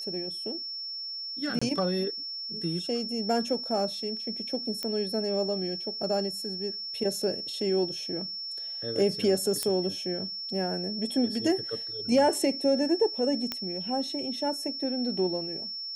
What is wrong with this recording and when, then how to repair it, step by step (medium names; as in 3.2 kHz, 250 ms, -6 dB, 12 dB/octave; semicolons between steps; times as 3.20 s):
whine 5.4 kHz -34 dBFS
1.59–1.61 s: dropout 25 ms
4.83 s: pop -18 dBFS
9.63 s: pop -13 dBFS
13.52 s: pop -15 dBFS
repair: de-click; band-stop 5.4 kHz, Q 30; interpolate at 1.59 s, 25 ms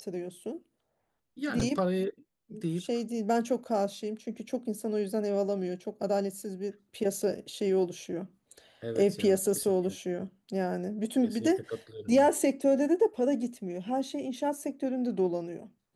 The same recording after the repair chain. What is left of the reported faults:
nothing left